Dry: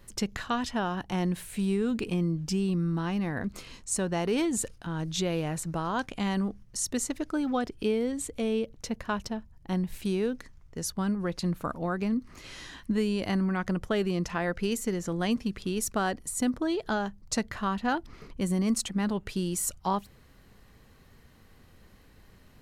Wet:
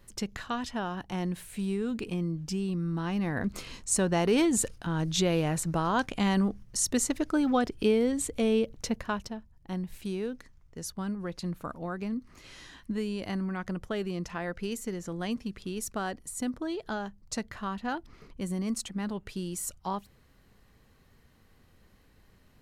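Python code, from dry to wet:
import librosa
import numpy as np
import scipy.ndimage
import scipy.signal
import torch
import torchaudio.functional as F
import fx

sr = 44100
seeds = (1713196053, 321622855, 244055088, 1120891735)

y = fx.gain(x, sr, db=fx.line((2.8, -3.5), (3.57, 3.0), (8.88, 3.0), (9.36, -5.0)))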